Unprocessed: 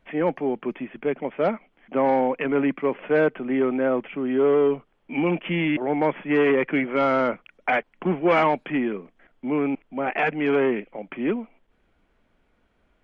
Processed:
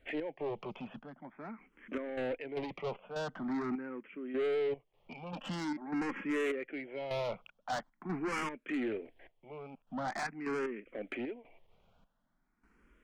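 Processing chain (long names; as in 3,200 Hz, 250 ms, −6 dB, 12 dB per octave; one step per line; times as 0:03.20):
0:05.32–0:06.26: comb filter 3.7 ms, depth 62%
in parallel at 0 dB: downward compressor, threshold −35 dBFS, peak gain reduction 18 dB
on the sum: gate pattern "x.xxx...xx.x.x" 76 BPM −12 dB
soft clipping −25 dBFS, distortion −6 dB
frequency shifter mixed with the dry sound +0.45 Hz
level −4.5 dB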